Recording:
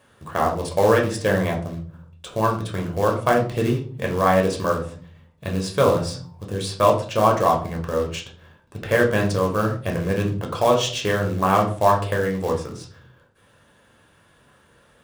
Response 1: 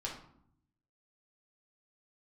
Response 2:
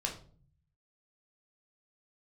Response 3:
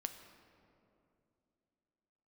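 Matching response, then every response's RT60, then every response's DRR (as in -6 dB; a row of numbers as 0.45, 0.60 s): 2; 0.65, 0.45, 2.7 s; -3.0, 0.0, 7.0 dB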